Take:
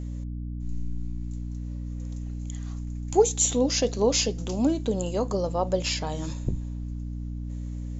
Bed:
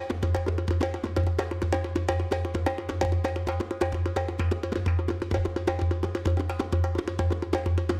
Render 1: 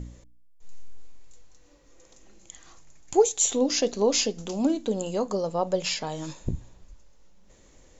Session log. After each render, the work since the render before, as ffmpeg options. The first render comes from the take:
-af "bandreject=f=60:t=h:w=4,bandreject=f=120:t=h:w=4,bandreject=f=180:t=h:w=4,bandreject=f=240:t=h:w=4,bandreject=f=300:t=h:w=4"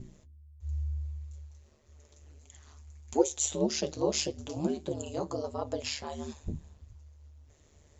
-af "flanger=delay=6.1:depth=5.8:regen=42:speed=1.6:shape=sinusoidal,aeval=exprs='val(0)*sin(2*PI*74*n/s)':c=same"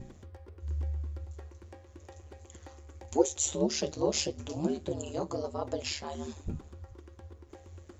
-filter_complex "[1:a]volume=0.0562[s0];[0:a][s0]amix=inputs=2:normalize=0"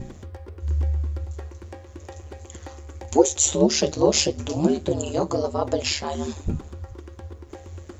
-af "volume=3.35,alimiter=limit=0.708:level=0:latency=1"

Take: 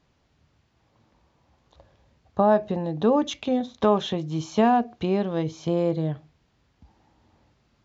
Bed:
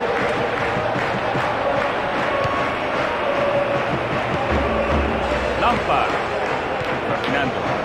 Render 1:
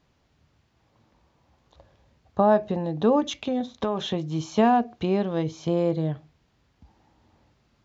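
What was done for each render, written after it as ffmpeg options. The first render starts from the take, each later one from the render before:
-filter_complex "[0:a]asettb=1/sr,asplit=3[s0][s1][s2];[s0]atrim=end=3.204[s3];[s1]atrim=start=3.2:end=4,asetpts=PTS-STARTPTS,afade=t=in:d=0.004:c=qsin,afade=t=out:st=0.796:d=0.004:c=qsin,acompressor=threshold=0.0891:ratio=6:attack=3.2:release=140:knee=1:detection=peak[s4];[s2]atrim=start=3.996[s5];[s3][s4]acrossfade=d=0.004:c1=hsin:c2=qsin[s6];[s6][s5]acrossfade=d=0.004:c1=qsin:c2=hsin"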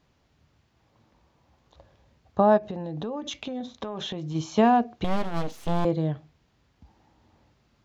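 -filter_complex "[0:a]asplit=3[s0][s1][s2];[s0]afade=t=out:st=2.57:d=0.02[s3];[s1]acompressor=threshold=0.0355:ratio=8:attack=3.2:release=140:knee=1:detection=peak,afade=t=in:st=2.57:d=0.02,afade=t=out:st=4.34:d=0.02[s4];[s2]afade=t=in:st=4.34:d=0.02[s5];[s3][s4][s5]amix=inputs=3:normalize=0,asettb=1/sr,asplit=3[s6][s7][s8];[s6]atrim=end=5.044[s9];[s7]atrim=start=5.04:end=5.85,asetpts=PTS-STARTPTS,afade=t=in:d=0.004:c=qsin,afade=t=out:st=0.806:d=0.004:c=qsin,aeval=exprs='abs(val(0))':c=same[s10];[s8]atrim=start=5.846[s11];[s9][s10]acrossfade=d=0.004:c1=hsin:c2=qsin[s12];[s12][s11]acrossfade=d=0.004:c1=qsin:c2=hsin"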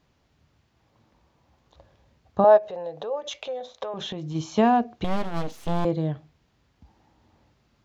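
-filter_complex "[0:a]asettb=1/sr,asplit=3[s0][s1][s2];[s0]atrim=end=2.444[s3];[s1]atrim=start=2.44:end=3.94,asetpts=PTS-STARTPTS,afade=t=in:d=0.004:c=qsin,afade=t=out:st=1.496:d=0.004:c=qsin,lowshelf=f=370:t=q:w=3:g=-11.5[s4];[s2]atrim=start=3.936[s5];[s3][s4]acrossfade=d=0.004:c1=hsin:c2=qsin[s6];[s6][s5]acrossfade=d=0.004:c1=qsin:c2=hsin"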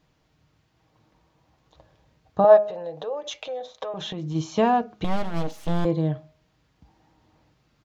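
-af "aecho=1:1:6.4:0.36,bandreject=f=207.9:t=h:w=4,bandreject=f=415.8:t=h:w=4,bandreject=f=623.7:t=h:w=4,bandreject=f=831.6:t=h:w=4,bandreject=f=1039.5:t=h:w=4,bandreject=f=1247.4:t=h:w=4,bandreject=f=1455.3:t=h:w=4,bandreject=f=1663.2:t=h:w=4"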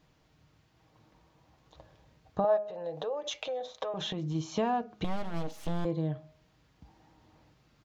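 -af "acompressor=threshold=0.02:ratio=2"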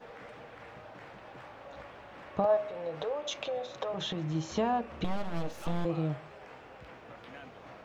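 -filter_complex "[1:a]volume=0.0398[s0];[0:a][s0]amix=inputs=2:normalize=0"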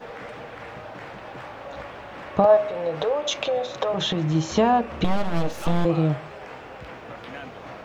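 -af "volume=3.35"

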